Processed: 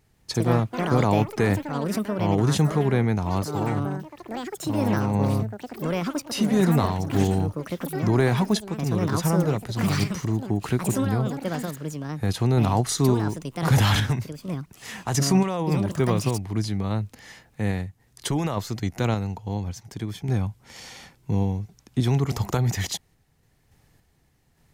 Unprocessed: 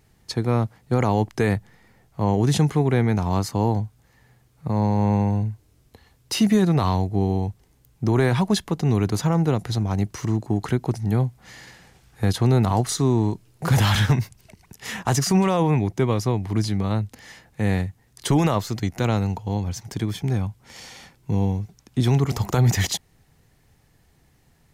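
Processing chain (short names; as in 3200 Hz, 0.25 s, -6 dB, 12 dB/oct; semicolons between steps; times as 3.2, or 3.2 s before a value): random-step tremolo; echoes that change speed 0.137 s, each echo +6 st, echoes 3, each echo -6 dB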